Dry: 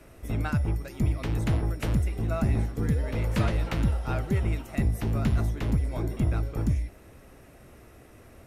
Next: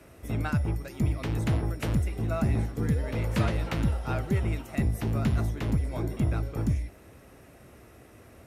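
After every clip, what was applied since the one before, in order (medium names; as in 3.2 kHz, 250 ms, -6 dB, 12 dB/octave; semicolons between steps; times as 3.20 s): high-pass 57 Hz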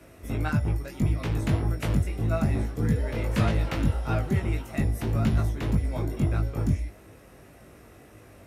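chorus 1.7 Hz, delay 18.5 ms, depth 3.1 ms; trim +4.5 dB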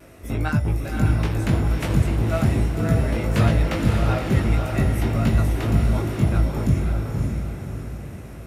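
on a send: echo that smears into a reverb 560 ms, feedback 46%, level -3 dB; on the sum: vibrato 0.4 Hz 11 cents; trim +4 dB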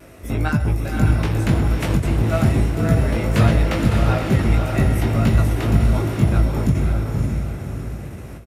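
echo from a far wall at 22 m, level -14 dB; endings held to a fixed fall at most 140 dB/s; trim +3 dB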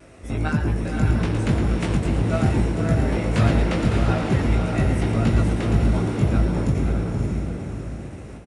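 resampled via 22.05 kHz; frequency-shifting echo 112 ms, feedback 46%, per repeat +120 Hz, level -9 dB; trim -3.5 dB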